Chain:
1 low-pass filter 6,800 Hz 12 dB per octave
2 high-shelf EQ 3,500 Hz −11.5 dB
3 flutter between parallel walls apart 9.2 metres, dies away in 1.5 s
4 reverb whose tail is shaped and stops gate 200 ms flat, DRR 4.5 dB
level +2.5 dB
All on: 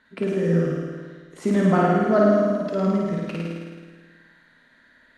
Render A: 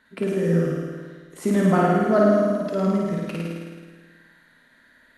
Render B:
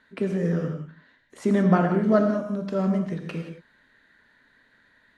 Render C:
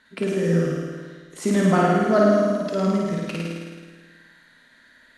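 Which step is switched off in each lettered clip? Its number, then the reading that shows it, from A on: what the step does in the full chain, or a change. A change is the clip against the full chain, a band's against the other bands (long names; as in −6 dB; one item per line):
1, change in momentary loudness spread +2 LU
3, echo-to-direct ratio 4.0 dB to −4.5 dB
2, 4 kHz band +5.5 dB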